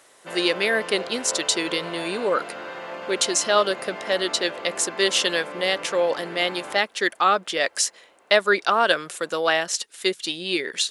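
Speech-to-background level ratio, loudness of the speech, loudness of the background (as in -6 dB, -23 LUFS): 12.0 dB, -23.0 LUFS, -35.0 LUFS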